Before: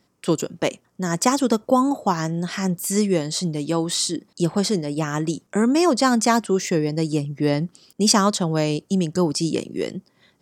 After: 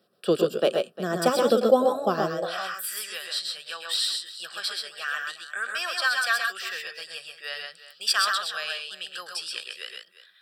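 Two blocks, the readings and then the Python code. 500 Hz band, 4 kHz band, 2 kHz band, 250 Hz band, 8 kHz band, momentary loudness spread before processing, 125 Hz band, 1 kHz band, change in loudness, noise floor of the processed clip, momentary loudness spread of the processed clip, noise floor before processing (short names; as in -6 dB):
-3.0 dB, +0.5 dB, +4.0 dB, -13.5 dB, -9.5 dB, 8 LU, -17.5 dB, -5.5 dB, -5.0 dB, -58 dBFS, 14 LU, -65 dBFS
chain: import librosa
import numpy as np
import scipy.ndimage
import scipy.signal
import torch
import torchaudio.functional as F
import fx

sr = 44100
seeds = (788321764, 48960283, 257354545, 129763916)

y = fx.fixed_phaser(x, sr, hz=1400.0, stages=8)
y = fx.echo_multitap(y, sr, ms=(111, 129, 143, 353), db=(-10.0, -4.0, -17.0, -15.5))
y = fx.filter_sweep_highpass(y, sr, from_hz=270.0, to_hz=1800.0, start_s=2.22, end_s=2.86, q=2.8)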